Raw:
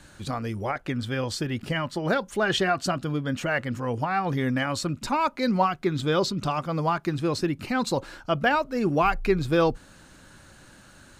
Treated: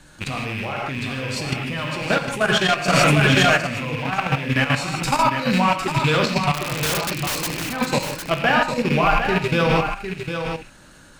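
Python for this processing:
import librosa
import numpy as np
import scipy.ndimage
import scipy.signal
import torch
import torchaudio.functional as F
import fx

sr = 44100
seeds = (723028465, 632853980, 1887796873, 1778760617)

p1 = fx.rattle_buzz(x, sr, strikes_db=-37.0, level_db=-21.0)
p2 = fx.tremolo_shape(p1, sr, shape='saw_down', hz=2.2, depth_pct=45)
p3 = 10.0 ** (-26.5 / 20.0) * np.tanh(p2 / 10.0 ** (-26.5 / 20.0))
p4 = p2 + (p3 * 10.0 ** (-9.0 / 20.0))
p5 = fx.rev_gated(p4, sr, seeds[0], gate_ms=190, shape='flat', drr_db=-0.5)
p6 = fx.level_steps(p5, sr, step_db=11)
p7 = fx.high_shelf(p6, sr, hz=6700.0, db=7.5, at=(5.02, 5.61))
p8 = fx.overflow_wrap(p7, sr, gain_db=25.5, at=(6.54, 7.64))
p9 = fx.dynamic_eq(p8, sr, hz=340.0, q=1.4, threshold_db=-39.0, ratio=4.0, max_db=-7)
p10 = p9 + fx.echo_single(p9, sr, ms=755, db=-7.5, dry=0)
p11 = fx.env_flatten(p10, sr, amount_pct=100, at=(2.92, 3.56), fade=0.02)
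y = p11 * 10.0 ** (6.5 / 20.0)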